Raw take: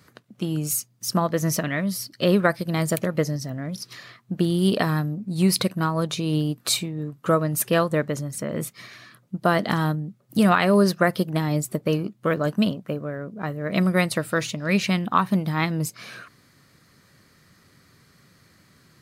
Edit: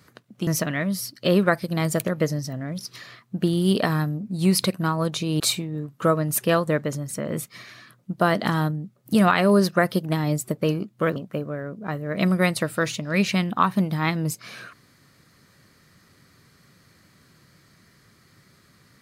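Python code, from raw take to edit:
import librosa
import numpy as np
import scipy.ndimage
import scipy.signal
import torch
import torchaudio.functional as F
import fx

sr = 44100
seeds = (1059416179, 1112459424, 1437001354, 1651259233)

y = fx.edit(x, sr, fx.cut(start_s=0.47, length_s=0.97),
    fx.cut(start_s=6.37, length_s=0.27),
    fx.cut(start_s=12.4, length_s=0.31), tone=tone)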